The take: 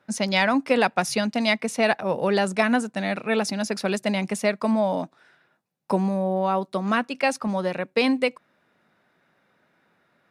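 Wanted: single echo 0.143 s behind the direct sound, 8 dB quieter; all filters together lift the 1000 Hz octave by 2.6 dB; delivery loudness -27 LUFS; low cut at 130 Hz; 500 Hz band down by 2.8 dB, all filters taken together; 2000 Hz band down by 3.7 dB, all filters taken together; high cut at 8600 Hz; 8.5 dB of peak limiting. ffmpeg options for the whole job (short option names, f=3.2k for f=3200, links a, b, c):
-af "highpass=130,lowpass=8.6k,equalizer=f=500:t=o:g=-5.5,equalizer=f=1k:t=o:g=7,equalizer=f=2k:t=o:g=-6.5,alimiter=limit=-15.5dB:level=0:latency=1,aecho=1:1:143:0.398"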